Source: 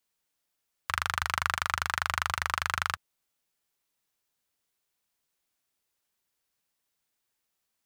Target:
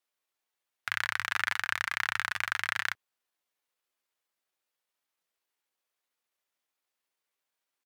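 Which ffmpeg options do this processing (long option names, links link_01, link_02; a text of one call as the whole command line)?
ffmpeg -i in.wav -af "asetrate=55563,aresample=44100,atempo=0.793701,bass=frequency=250:gain=-14,treble=frequency=4000:gain=-6" out.wav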